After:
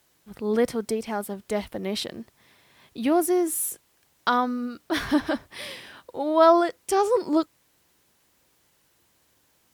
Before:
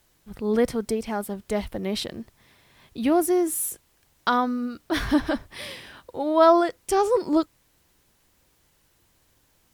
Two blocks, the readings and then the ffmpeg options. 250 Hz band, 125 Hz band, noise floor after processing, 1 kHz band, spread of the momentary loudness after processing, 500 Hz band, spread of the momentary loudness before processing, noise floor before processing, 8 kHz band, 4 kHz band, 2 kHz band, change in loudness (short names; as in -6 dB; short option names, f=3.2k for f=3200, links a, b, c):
-1.5 dB, -3.5 dB, -66 dBFS, 0.0 dB, 17 LU, -0.5 dB, 17 LU, -65 dBFS, 0.0 dB, 0.0 dB, 0.0 dB, -0.5 dB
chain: -af "highpass=f=170:p=1"